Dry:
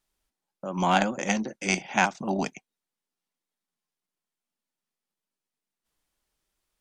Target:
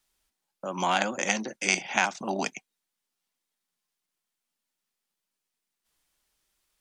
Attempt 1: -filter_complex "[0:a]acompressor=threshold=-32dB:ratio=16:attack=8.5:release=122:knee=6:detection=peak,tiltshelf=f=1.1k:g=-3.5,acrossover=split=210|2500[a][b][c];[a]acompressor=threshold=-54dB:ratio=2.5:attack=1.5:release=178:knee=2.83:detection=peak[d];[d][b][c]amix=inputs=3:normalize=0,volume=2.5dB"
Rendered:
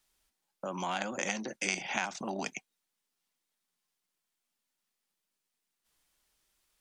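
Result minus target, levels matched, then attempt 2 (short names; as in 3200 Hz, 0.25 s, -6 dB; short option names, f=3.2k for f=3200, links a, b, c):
compressor: peak gain reduction +10 dB
-filter_complex "[0:a]acompressor=threshold=-21.5dB:ratio=16:attack=8.5:release=122:knee=6:detection=peak,tiltshelf=f=1.1k:g=-3.5,acrossover=split=210|2500[a][b][c];[a]acompressor=threshold=-54dB:ratio=2.5:attack=1.5:release=178:knee=2.83:detection=peak[d];[d][b][c]amix=inputs=3:normalize=0,volume=2.5dB"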